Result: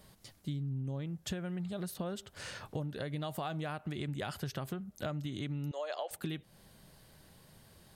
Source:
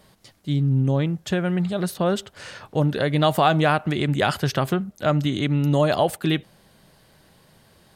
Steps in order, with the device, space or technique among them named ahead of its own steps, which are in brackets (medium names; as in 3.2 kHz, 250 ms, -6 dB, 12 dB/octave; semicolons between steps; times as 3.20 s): 5.71–6.11 s: elliptic band-pass 500–6800 Hz, stop band 50 dB; ASMR close-microphone chain (bass shelf 150 Hz +7 dB; compression 10:1, threshold -28 dBFS, peak gain reduction 15.5 dB; treble shelf 6.2 kHz +7 dB); trim -7 dB